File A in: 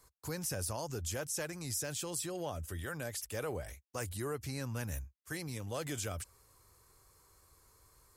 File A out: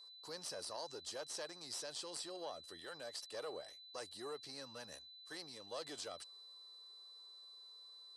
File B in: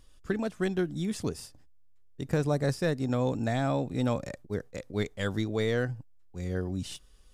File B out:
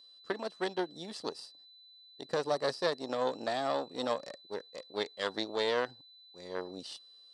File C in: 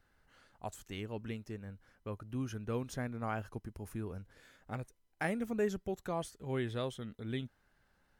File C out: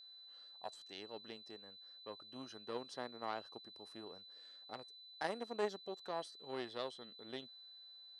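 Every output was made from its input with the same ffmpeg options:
ffmpeg -i in.wav -af "aeval=exprs='0.211*(cos(1*acos(clip(val(0)/0.211,-1,1)))-cos(1*PI/2))+0.0376*(cos(4*acos(clip(val(0)/0.211,-1,1)))-cos(4*PI/2))+0.015*(cos(7*acos(clip(val(0)/0.211,-1,1)))-cos(7*PI/2))':channel_layout=same,highpass=420,equalizer=frequency=1500:width_type=q:width=4:gain=-5,equalizer=frequency=2300:width_type=q:width=4:gain=-9,equalizer=frequency=4500:width_type=q:width=4:gain=8,equalizer=frequency=6900:width_type=q:width=4:gain=-9,lowpass=frequency=8400:width=0.5412,lowpass=frequency=8400:width=1.3066,aeval=exprs='val(0)+0.00158*sin(2*PI*4000*n/s)':channel_layout=same,volume=1dB" out.wav

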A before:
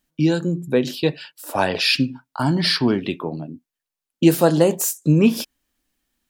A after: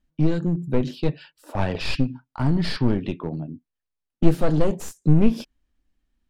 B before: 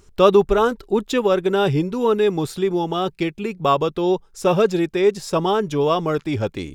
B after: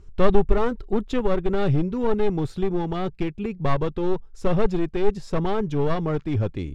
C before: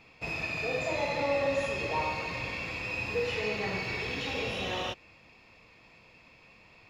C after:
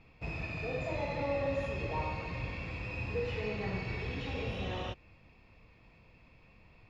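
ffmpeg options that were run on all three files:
ffmpeg -i in.wav -af "aeval=exprs='clip(val(0),-1,0.0891)':channel_layout=same,aemphasis=mode=reproduction:type=bsi,volume=-6dB" out.wav

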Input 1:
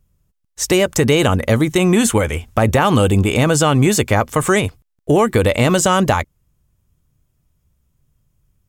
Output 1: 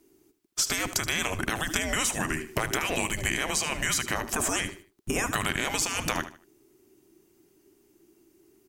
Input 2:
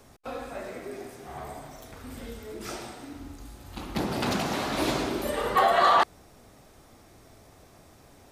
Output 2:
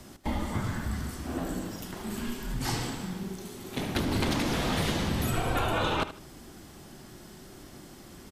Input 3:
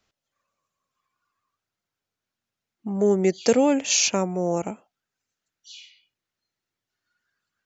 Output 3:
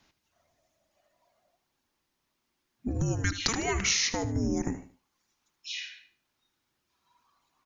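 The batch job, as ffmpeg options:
ffmpeg -i in.wav -filter_complex "[0:a]highpass=110,afftfilt=real='re*lt(hypot(re,im),0.355)':imag='im*lt(hypot(re,im),0.355)':win_size=1024:overlap=0.75,acompressor=threshold=-31dB:ratio=12,afreqshift=-470,asplit=2[link_01][link_02];[link_02]aecho=0:1:76|152|228:0.224|0.0672|0.0201[link_03];[link_01][link_03]amix=inputs=2:normalize=0,volume=7dB" out.wav

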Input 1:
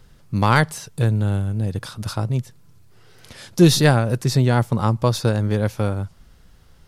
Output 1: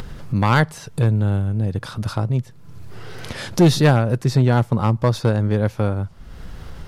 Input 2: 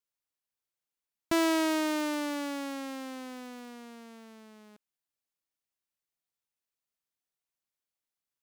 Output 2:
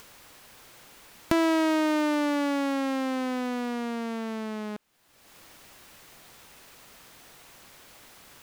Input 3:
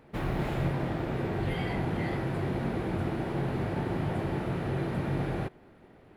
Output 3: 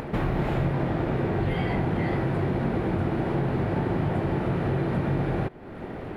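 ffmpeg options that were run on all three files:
ffmpeg -i in.wav -af "highshelf=frequency=3900:gain=-10,acompressor=mode=upward:threshold=-20dB:ratio=2.5,volume=9dB,asoftclip=hard,volume=-9dB,volume=1.5dB" out.wav

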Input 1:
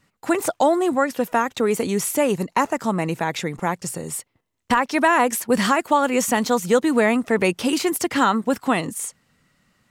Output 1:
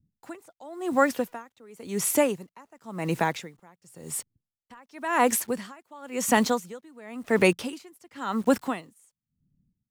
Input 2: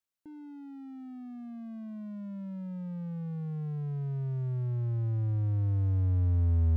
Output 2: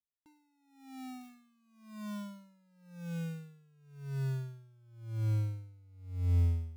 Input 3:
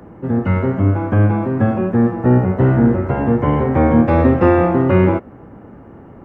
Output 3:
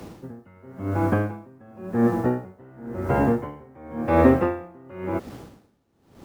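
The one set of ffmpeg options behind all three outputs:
ffmpeg -i in.wav -filter_complex "[0:a]acrossover=split=240[link_01][link_02];[link_01]alimiter=limit=-17.5dB:level=0:latency=1:release=135[link_03];[link_02]acrusher=bits=7:mix=0:aa=0.000001[link_04];[link_03][link_04]amix=inputs=2:normalize=0,aeval=exprs='val(0)*pow(10,-31*(0.5-0.5*cos(2*PI*0.94*n/s))/20)':channel_layout=same" out.wav

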